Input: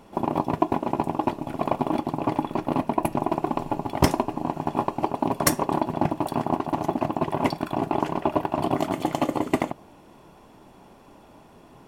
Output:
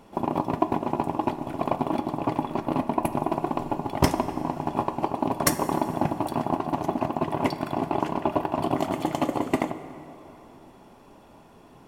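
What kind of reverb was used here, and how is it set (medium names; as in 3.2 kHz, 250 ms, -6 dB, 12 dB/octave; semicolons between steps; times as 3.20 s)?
plate-style reverb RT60 3.4 s, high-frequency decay 0.55×, DRR 11 dB; trim -1.5 dB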